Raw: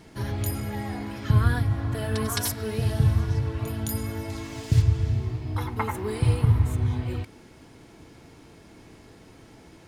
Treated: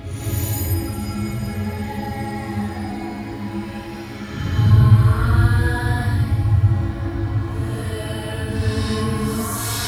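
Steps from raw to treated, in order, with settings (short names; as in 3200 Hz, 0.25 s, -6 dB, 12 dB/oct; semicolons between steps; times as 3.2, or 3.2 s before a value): Paulstretch 4.9×, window 0.10 s, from 0.39; bit-crush 11-bit; non-linear reverb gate 0.27 s rising, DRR -6.5 dB; gain -3 dB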